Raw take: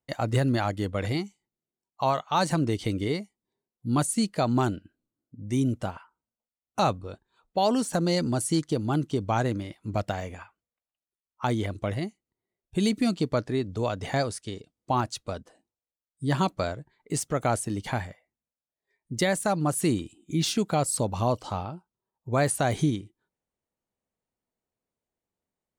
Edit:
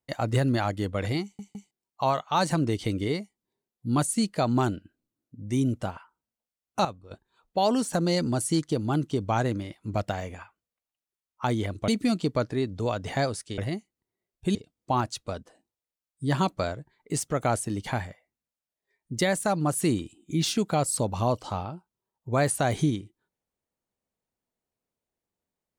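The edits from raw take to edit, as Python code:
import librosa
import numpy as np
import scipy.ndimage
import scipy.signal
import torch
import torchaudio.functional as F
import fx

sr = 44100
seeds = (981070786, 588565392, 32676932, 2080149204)

y = fx.edit(x, sr, fx.stutter_over(start_s=1.23, slice_s=0.16, count=3),
    fx.clip_gain(start_s=6.85, length_s=0.26, db=-11.5),
    fx.move(start_s=11.88, length_s=0.97, to_s=14.55), tone=tone)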